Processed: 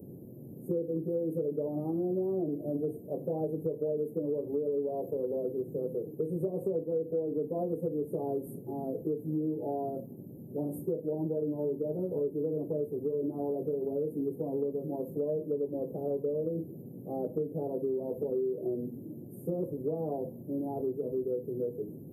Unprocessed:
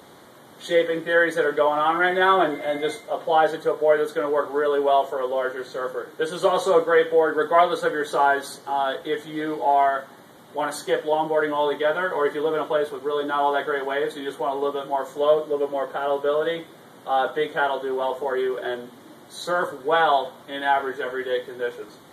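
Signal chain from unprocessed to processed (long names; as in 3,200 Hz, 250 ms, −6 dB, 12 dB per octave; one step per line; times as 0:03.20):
inverse Chebyshev band-stop filter 1,700–4,400 Hz, stop band 80 dB
parametric band 130 Hz +11 dB 1.9 octaves
downward compressor, threshold −29 dBFS, peak gain reduction 12.5 dB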